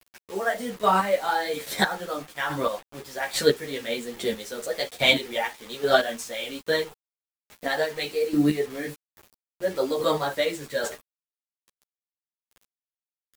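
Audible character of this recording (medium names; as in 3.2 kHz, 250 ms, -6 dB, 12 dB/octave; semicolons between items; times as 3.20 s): chopped level 1.2 Hz, depth 65%, duty 20%; a quantiser's noise floor 8-bit, dither none; a shimmering, thickened sound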